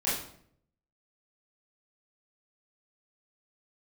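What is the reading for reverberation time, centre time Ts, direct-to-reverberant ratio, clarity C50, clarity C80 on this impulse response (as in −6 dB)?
0.65 s, 51 ms, −10.5 dB, 2.5 dB, 7.0 dB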